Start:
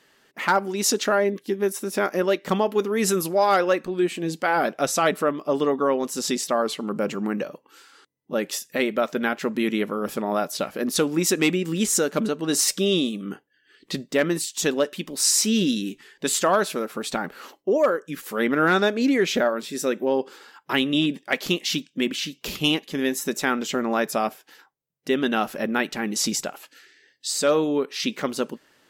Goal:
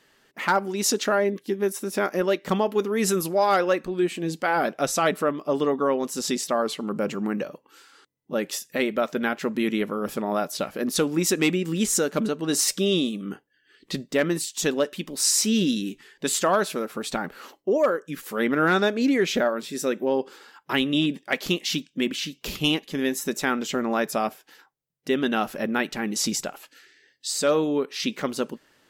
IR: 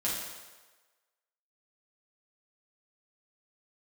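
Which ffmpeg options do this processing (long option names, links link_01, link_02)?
-af "lowshelf=frequency=85:gain=7.5,volume=-1.5dB"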